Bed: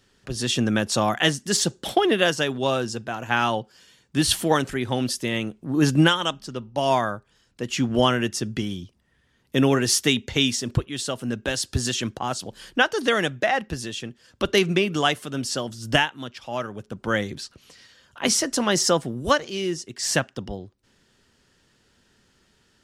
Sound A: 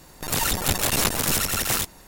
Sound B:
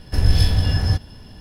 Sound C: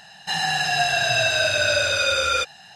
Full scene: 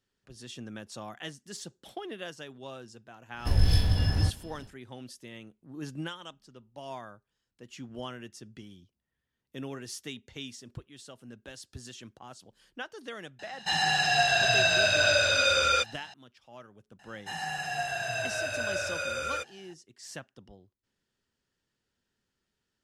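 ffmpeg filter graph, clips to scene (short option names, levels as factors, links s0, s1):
-filter_complex "[3:a]asplit=2[s0][s1];[0:a]volume=0.1[s2];[s0]equalizer=f=11000:w=2.5:g=-9.5[s3];[s1]equalizer=f=4100:w=1.6:g=-10[s4];[2:a]atrim=end=1.4,asetpts=PTS-STARTPTS,volume=0.447,afade=t=in:d=0.1,afade=t=out:st=1.3:d=0.1,adelay=146853S[s5];[s3]atrim=end=2.75,asetpts=PTS-STARTPTS,volume=0.708,afade=t=in:d=0.004:c=hsin,afade=t=out:st=2.746:d=0.004:c=hsin,adelay=13390[s6];[s4]atrim=end=2.75,asetpts=PTS-STARTPTS,volume=0.316,afade=t=in:d=0.004:c=hsin,afade=t=out:st=2.746:d=0.004:c=hsin,adelay=16990[s7];[s2][s5][s6][s7]amix=inputs=4:normalize=0"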